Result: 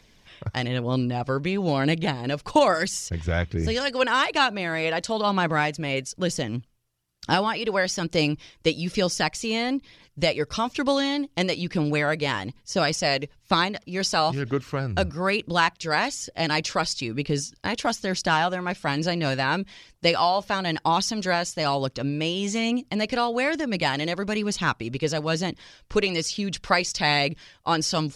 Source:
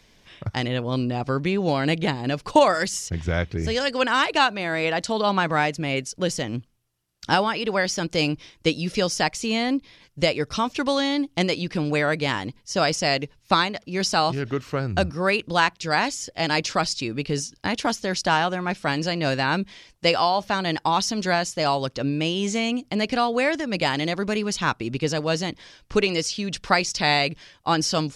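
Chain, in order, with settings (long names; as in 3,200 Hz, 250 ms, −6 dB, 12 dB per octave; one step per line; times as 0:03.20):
phase shifter 1.1 Hz, delay 2.2 ms, feedback 26%
level −1.5 dB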